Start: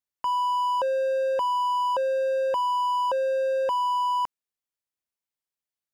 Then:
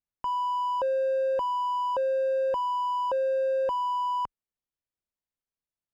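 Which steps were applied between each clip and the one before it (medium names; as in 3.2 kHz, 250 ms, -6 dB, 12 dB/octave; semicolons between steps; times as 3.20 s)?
tilt EQ -2.5 dB/octave; trim -3.5 dB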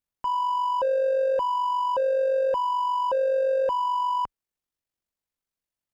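AM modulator 47 Hz, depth 30%; trim +5 dB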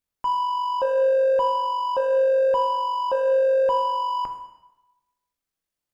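plate-style reverb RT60 1 s, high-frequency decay 0.85×, DRR 4.5 dB; trim +2 dB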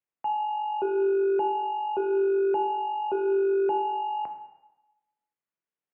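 mistuned SSB -140 Hz 280–2900 Hz; trim -4.5 dB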